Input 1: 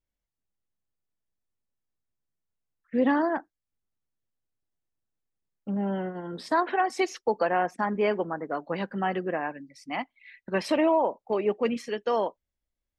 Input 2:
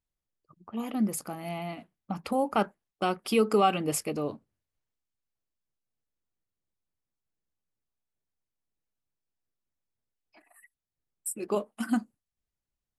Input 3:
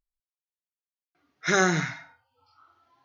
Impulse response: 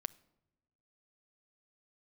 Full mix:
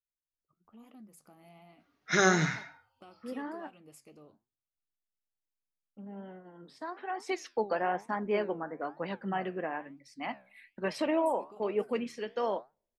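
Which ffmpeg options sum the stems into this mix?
-filter_complex "[0:a]bandreject=f=50:t=h:w=6,bandreject=f=100:t=h:w=6,bandreject=f=150:t=h:w=6,adelay=300,volume=-2dB,afade=t=in:st=7.01:d=0.38:silence=0.316228,asplit=2[a][b];[b]volume=-19.5dB[c];[1:a]acompressor=threshold=-36dB:ratio=3,volume=-13dB[d];[2:a]adelay=650,volume=2dB[e];[3:a]atrim=start_sample=2205[f];[c][f]afir=irnorm=-1:irlink=0[g];[a][d][e][g]amix=inputs=4:normalize=0,flanger=delay=6.2:depth=9.9:regen=79:speed=1.1:shape=triangular"

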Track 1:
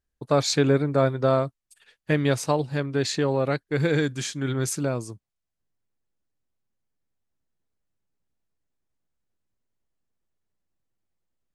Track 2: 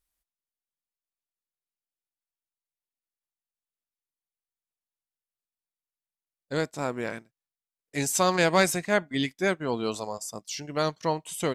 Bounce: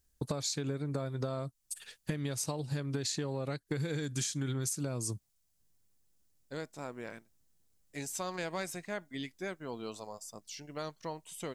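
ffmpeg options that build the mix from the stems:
-filter_complex "[0:a]bass=f=250:g=5,treble=f=4k:g=13,acompressor=threshold=-28dB:ratio=4,volume=2.5dB[a];[1:a]acompressor=threshold=-30dB:ratio=1.5,volume=-10dB[b];[a][b]amix=inputs=2:normalize=0,acompressor=threshold=-31dB:ratio=10"

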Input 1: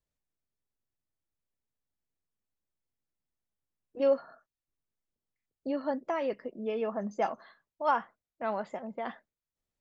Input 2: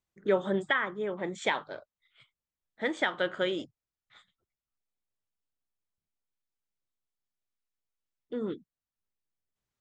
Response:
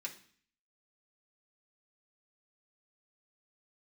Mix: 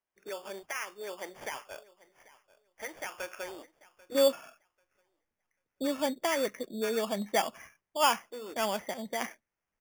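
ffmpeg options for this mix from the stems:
-filter_complex "[0:a]equalizer=f=2.2k:w=2.3:g=11,adelay=150,volume=1dB[a];[1:a]alimiter=level_in=0.5dB:limit=-24dB:level=0:latency=1:release=244,volume=-0.5dB,highpass=620,highshelf=f=3.5k:g=-6.5,volume=0.5dB,asplit=2[b][c];[c]volume=-20.5dB,aecho=0:1:790|1580|2370:1|0.19|0.0361[d];[a][b][d]amix=inputs=3:normalize=0,acrusher=samples=11:mix=1:aa=0.000001"

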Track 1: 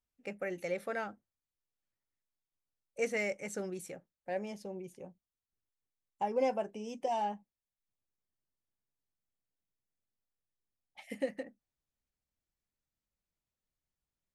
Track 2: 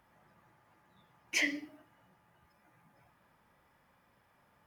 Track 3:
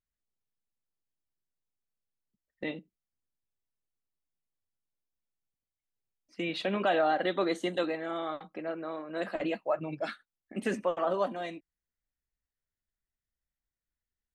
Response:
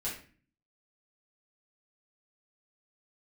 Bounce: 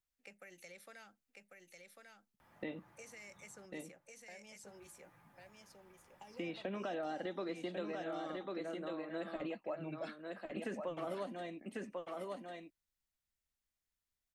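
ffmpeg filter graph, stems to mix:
-filter_complex "[0:a]tiltshelf=f=650:g=-9,alimiter=level_in=1.5dB:limit=-24dB:level=0:latency=1:release=52,volume=-1.5dB,acrossover=split=260|3000[a][b][c];[b]acompressor=threshold=-45dB:ratio=6[d];[a][d][c]amix=inputs=3:normalize=0,volume=-10.5dB,asplit=2[e][f];[f]volume=-4dB[g];[1:a]adelay=2400,volume=1dB,asplit=3[h][i][j];[h]atrim=end=3.66,asetpts=PTS-STARTPTS,afade=t=out:st=3.656:d=0.004:c=hsin[k];[i]atrim=start=3.66:end=4.63,asetpts=PTS-STARTPTS,volume=0[l];[j]atrim=start=4.63,asetpts=PTS-STARTPTS,afade=t=in:d=0.004:c=hsin[m];[k][l][m]concat=n=3:v=0:a=1,asplit=2[n][o];[o]volume=-16dB[p];[2:a]acontrast=89,volume=-11.5dB,asplit=2[q][r];[r]volume=-6.5dB[s];[g][p][s]amix=inputs=3:normalize=0,aecho=0:1:1096:1[t];[e][n][q][t]amix=inputs=4:normalize=0,acrossover=split=460|1900[u][v][w];[u]acompressor=threshold=-42dB:ratio=4[x];[v]acompressor=threshold=-46dB:ratio=4[y];[w]acompressor=threshold=-56dB:ratio=4[z];[x][y][z]amix=inputs=3:normalize=0"

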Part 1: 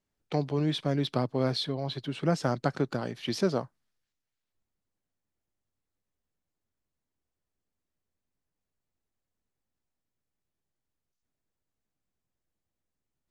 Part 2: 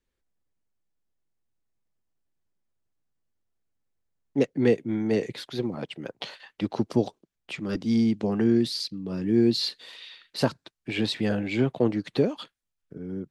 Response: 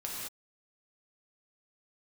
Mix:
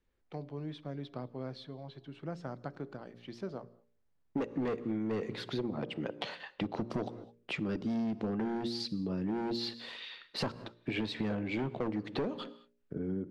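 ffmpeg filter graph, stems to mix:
-filter_complex "[0:a]volume=-13.5dB,asplit=2[a][b];[b]volume=-22dB[c];[1:a]volume=22dB,asoftclip=hard,volume=-22dB,volume=2.5dB,asplit=2[d][e];[e]volume=-19dB[f];[2:a]atrim=start_sample=2205[g];[c][f]amix=inputs=2:normalize=0[h];[h][g]afir=irnorm=-1:irlink=0[i];[a][d][i]amix=inputs=3:normalize=0,aemphasis=mode=reproduction:type=75fm,bandreject=f=58.72:t=h:w=4,bandreject=f=117.44:t=h:w=4,bandreject=f=176.16:t=h:w=4,bandreject=f=234.88:t=h:w=4,bandreject=f=293.6:t=h:w=4,bandreject=f=352.32:t=h:w=4,bandreject=f=411.04:t=h:w=4,bandreject=f=469.76:t=h:w=4,bandreject=f=528.48:t=h:w=4,bandreject=f=587.2:t=h:w=4,acompressor=threshold=-32dB:ratio=6"

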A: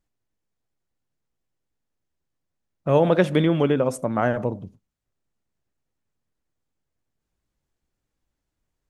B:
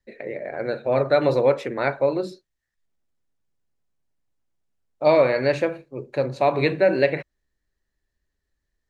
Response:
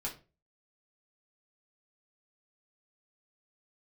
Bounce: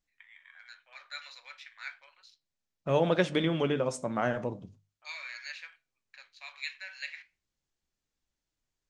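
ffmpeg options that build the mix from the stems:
-filter_complex "[0:a]lowpass=f=7.4k:w=0.5412,lowpass=f=7.4k:w=1.3066,highshelf=f=2.2k:g=11,volume=-4.5dB[a];[1:a]highpass=f=1.5k:w=0.5412,highpass=f=1.5k:w=1.3066,afwtdn=0.00447,adynamicequalizer=threshold=0.00708:dfrequency=2400:dqfactor=0.7:tfrequency=2400:tqfactor=0.7:attack=5:release=100:ratio=0.375:range=3.5:mode=boostabove:tftype=highshelf,volume=-10.5dB,asplit=2[b][c];[c]volume=-9.5dB[d];[2:a]atrim=start_sample=2205[e];[d][e]afir=irnorm=-1:irlink=0[f];[a][b][f]amix=inputs=3:normalize=0,bandreject=f=50:t=h:w=6,bandreject=f=100:t=h:w=6,bandreject=f=150:t=h:w=6,flanger=delay=4.4:depth=9.6:regen=-71:speed=0.37:shape=sinusoidal"

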